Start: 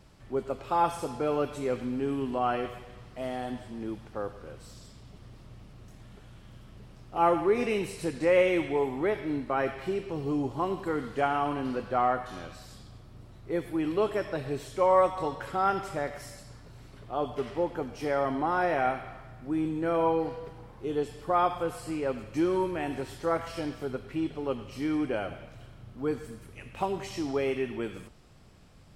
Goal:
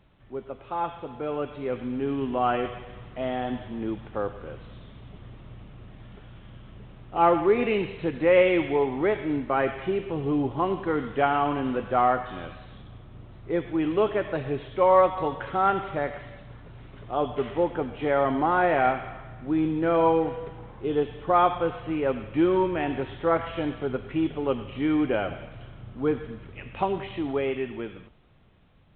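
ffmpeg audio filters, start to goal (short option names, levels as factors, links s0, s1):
-af "dynaudnorm=f=300:g=13:m=3.16,volume=0.596" -ar 8000 -c:a pcm_alaw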